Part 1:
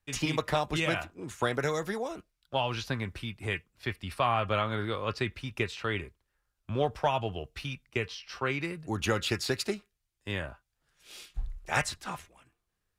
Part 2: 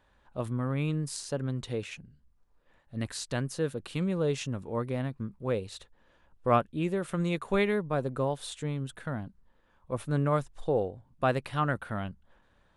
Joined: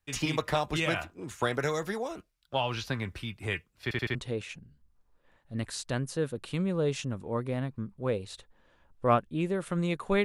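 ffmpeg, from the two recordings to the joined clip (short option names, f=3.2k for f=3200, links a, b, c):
-filter_complex "[0:a]apad=whole_dur=10.24,atrim=end=10.24,asplit=4[a][b][c][d];[a]atrim=end=3.912[e];[b]atrim=start=3.828:end=3.912[f];[c]atrim=start=3.828:end=3.912[g];[d]atrim=start=3.828:end=3.912[h];[1:a]atrim=start=1.568:end=7.66[i];[e][f]acrossfade=d=0.004:c1=hsin:c2=hsin[j];[j][g]acrossfade=d=0.004:c1=hsin:c2=hsin[k];[k][h]acrossfade=d=0.004:c1=hsin:c2=hsin[l];[l][i]acrossfade=d=0.004:c1=hsin:c2=hsin"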